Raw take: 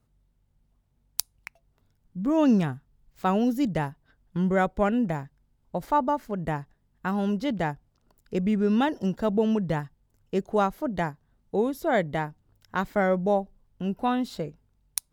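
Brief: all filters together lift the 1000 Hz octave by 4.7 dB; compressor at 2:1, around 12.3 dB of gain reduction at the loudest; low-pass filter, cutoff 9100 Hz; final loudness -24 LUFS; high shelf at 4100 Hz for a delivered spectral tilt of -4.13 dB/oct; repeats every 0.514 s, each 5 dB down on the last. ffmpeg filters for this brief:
-af "lowpass=9.1k,equalizer=f=1k:t=o:g=6.5,highshelf=f=4.1k:g=-7,acompressor=threshold=-37dB:ratio=2,aecho=1:1:514|1028|1542|2056|2570|3084|3598:0.562|0.315|0.176|0.0988|0.0553|0.031|0.0173,volume=10dB"

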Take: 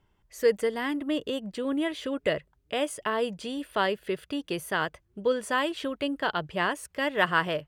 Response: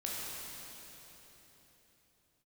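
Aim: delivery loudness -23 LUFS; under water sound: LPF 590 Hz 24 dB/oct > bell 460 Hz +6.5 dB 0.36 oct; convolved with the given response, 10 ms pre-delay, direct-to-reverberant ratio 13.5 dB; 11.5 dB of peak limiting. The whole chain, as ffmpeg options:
-filter_complex "[0:a]alimiter=limit=-19dB:level=0:latency=1,asplit=2[a][b];[1:a]atrim=start_sample=2205,adelay=10[c];[b][c]afir=irnorm=-1:irlink=0,volume=-17dB[d];[a][d]amix=inputs=2:normalize=0,lowpass=f=590:w=0.5412,lowpass=f=590:w=1.3066,equalizer=f=460:t=o:w=0.36:g=6.5,volume=8dB"

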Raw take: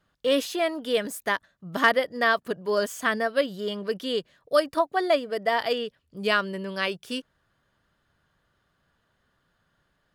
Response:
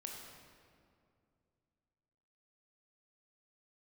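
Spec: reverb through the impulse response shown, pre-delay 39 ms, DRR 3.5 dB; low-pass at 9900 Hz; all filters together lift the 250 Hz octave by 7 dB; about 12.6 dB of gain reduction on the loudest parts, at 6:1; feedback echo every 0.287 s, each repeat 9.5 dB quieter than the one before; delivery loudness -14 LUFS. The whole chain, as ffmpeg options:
-filter_complex "[0:a]lowpass=9.9k,equalizer=f=250:t=o:g=8.5,acompressor=threshold=-29dB:ratio=6,aecho=1:1:287|574|861|1148:0.335|0.111|0.0365|0.012,asplit=2[a][b];[1:a]atrim=start_sample=2205,adelay=39[c];[b][c]afir=irnorm=-1:irlink=0,volume=-1dB[d];[a][d]amix=inputs=2:normalize=0,volume=17.5dB"

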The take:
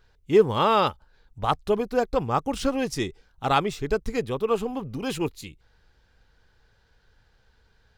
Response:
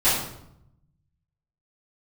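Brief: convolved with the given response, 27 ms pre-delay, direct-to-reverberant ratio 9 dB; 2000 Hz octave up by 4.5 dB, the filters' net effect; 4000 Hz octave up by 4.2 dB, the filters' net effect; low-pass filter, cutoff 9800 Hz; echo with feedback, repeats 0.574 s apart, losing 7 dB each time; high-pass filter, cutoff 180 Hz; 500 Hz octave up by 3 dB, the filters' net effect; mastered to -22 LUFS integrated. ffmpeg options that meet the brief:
-filter_complex "[0:a]highpass=180,lowpass=9.8k,equalizer=f=500:t=o:g=3.5,equalizer=f=2k:t=o:g=5,equalizer=f=4k:t=o:g=3.5,aecho=1:1:574|1148|1722|2296|2870:0.447|0.201|0.0905|0.0407|0.0183,asplit=2[a][b];[1:a]atrim=start_sample=2205,adelay=27[c];[b][c]afir=irnorm=-1:irlink=0,volume=-26dB[d];[a][d]amix=inputs=2:normalize=0"

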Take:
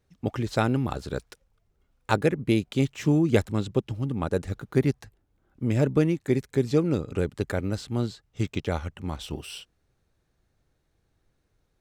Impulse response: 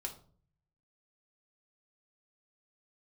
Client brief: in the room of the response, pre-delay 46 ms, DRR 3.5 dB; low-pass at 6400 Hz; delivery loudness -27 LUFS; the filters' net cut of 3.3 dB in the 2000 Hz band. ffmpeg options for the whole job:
-filter_complex "[0:a]lowpass=6.4k,equalizer=f=2k:t=o:g=-4.5,asplit=2[a][b];[1:a]atrim=start_sample=2205,adelay=46[c];[b][c]afir=irnorm=-1:irlink=0,volume=-2dB[d];[a][d]amix=inputs=2:normalize=0,volume=-1.5dB"

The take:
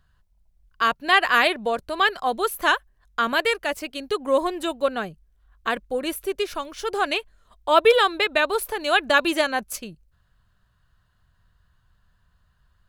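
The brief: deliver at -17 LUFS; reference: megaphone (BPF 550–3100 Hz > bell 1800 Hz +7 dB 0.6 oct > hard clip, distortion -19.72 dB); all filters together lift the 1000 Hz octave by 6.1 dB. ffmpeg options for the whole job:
-af "highpass=550,lowpass=3.1k,equalizer=f=1k:t=o:g=7,equalizer=f=1.8k:t=o:w=0.6:g=7,asoftclip=type=hard:threshold=-4.5dB,volume=1dB"

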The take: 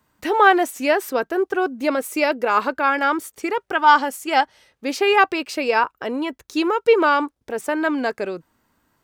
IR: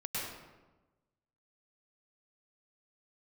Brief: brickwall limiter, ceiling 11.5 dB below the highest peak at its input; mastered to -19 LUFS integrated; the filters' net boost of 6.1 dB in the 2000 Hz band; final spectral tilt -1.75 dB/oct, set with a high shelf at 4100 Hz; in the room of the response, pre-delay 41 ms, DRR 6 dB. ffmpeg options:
-filter_complex "[0:a]equalizer=f=2k:t=o:g=7.5,highshelf=f=4.1k:g=5.5,alimiter=limit=-9dB:level=0:latency=1,asplit=2[a][b];[1:a]atrim=start_sample=2205,adelay=41[c];[b][c]afir=irnorm=-1:irlink=0,volume=-10dB[d];[a][d]amix=inputs=2:normalize=0,volume=1dB"

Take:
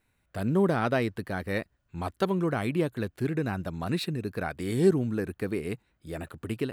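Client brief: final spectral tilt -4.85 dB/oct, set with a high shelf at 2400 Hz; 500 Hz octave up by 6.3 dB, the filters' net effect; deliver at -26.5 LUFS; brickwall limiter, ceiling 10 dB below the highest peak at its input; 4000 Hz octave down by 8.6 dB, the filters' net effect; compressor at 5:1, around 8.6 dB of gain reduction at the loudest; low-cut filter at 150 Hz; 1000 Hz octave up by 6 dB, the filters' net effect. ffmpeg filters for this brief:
-af "highpass=150,equalizer=f=500:t=o:g=7.5,equalizer=f=1k:t=o:g=6.5,highshelf=f=2.4k:g=-5,equalizer=f=4k:t=o:g=-6.5,acompressor=threshold=-21dB:ratio=5,volume=5dB,alimiter=limit=-14.5dB:level=0:latency=1"

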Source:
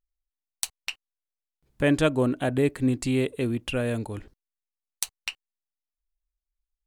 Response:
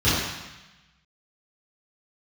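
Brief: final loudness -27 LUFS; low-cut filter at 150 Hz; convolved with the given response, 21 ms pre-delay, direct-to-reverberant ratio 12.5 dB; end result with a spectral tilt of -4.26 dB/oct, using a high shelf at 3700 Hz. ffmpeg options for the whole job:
-filter_complex "[0:a]highpass=150,highshelf=f=3.7k:g=6,asplit=2[a][b];[1:a]atrim=start_sample=2205,adelay=21[c];[b][c]afir=irnorm=-1:irlink=0,volume=-31dB[d];[a][d]amix=inputs=2:normalize=0,volume=-0.5dB"

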